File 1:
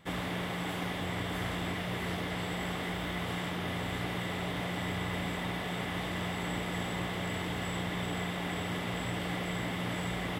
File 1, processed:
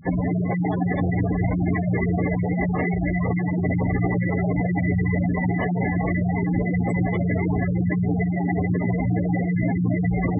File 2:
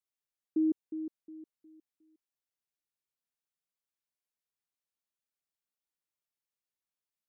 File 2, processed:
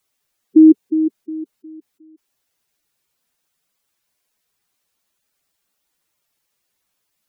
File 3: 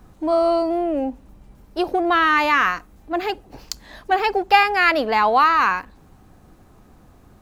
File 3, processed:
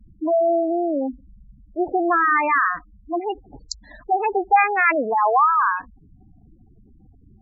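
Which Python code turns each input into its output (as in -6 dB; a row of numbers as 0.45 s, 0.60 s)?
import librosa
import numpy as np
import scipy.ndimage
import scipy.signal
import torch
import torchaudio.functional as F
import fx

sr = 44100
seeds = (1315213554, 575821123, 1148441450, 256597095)

y = fx.spec_gate(x, sr, threshold_db=-10, keep='strong')
y = y * 10.0 ** (-22 / 20.0) / np.sqrt(np.mean(np.square(y)))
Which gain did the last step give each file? +16.0 dB, +21.0 dB, 0.0 dB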